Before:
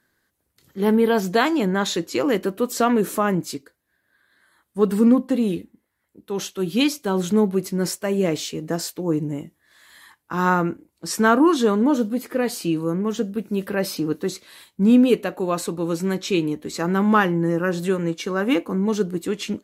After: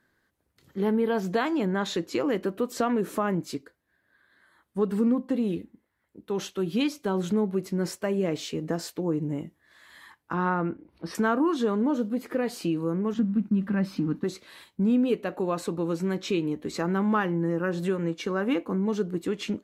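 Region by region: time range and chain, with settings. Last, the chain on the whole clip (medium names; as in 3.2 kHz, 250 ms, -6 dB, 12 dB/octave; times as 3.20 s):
10.33–11.15 s: upward compressor, threshold -41 dBFS + boxcar filter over 6 samples
13.14–14.24 s: companding laws mixed up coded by mu + expander -35 dBFS + FFT filter 110 Hz 0 dB, 220 Hz +10 dB, 440 Hz -10 dB, 1.2 kHz 0 dB, 14 kHz -13 dB
whole clip: treble shelf 4.7 kHz -10.5 dB; compression 2:1, threshold -27 dBFS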